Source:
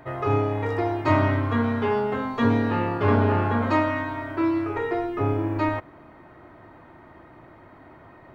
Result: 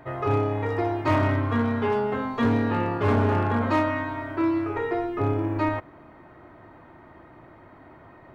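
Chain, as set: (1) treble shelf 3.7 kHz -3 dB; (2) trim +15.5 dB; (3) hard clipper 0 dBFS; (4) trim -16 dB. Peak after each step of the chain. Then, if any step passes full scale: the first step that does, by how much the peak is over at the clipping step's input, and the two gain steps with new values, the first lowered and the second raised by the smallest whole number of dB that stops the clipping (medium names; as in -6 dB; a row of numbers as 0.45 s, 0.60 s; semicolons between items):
-7.5 dBFS, +8.0 dBFS, 0.0 dBFS, -16.0 dBFS; step 2, 8.0 dB; step 2 +7.5 dB, step 4 -8 dB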